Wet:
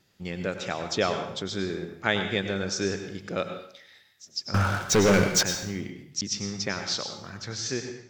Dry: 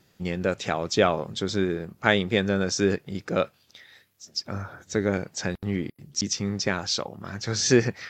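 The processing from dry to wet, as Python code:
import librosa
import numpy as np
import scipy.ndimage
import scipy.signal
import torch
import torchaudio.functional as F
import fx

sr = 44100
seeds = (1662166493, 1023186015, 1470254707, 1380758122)

y = fx.fade_out_tail(x, sr, length_s=0.82)
y = fx.lowpass(y, sr, hz=3900.0, slope=6)
y = fx.high_shelf(y, sr, hz=2500.0, db=9.5)
y = fx.leveller(y, sr, passes=5, at=(4.54, 5.43))
y = fx.rev_plate(y, sr, seeds[0], rt60_s=0.62, hf_ratio=1.0, predelay_ms=85, drr_db=6.5)
y = y * 10.0 ** (-6.0 / 20.0)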